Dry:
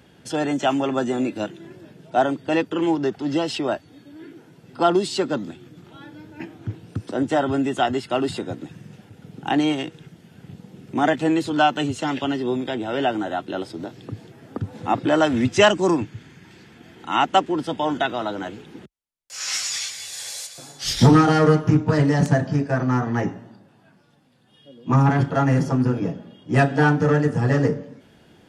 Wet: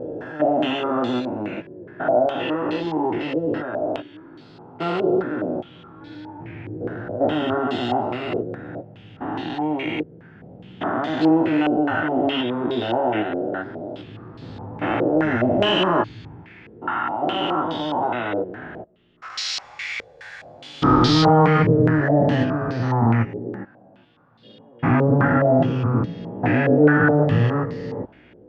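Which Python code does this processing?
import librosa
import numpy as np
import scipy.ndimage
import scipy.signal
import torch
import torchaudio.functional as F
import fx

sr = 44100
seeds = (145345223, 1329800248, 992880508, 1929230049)

y = fx.spec_steps(x, sr, hold_ms=400)
y = fx.chorus_voices(y, sr, voices=6, hz=0.34, base_ms=18, depth_ms=1.9, mix_pct=40)
y = fx.filter_held_lowpass(y, sr, hz=4.8, low_hz=480.0, high_hz=4200.0)
y = y * 10.0 ** (4.5 / 20.0)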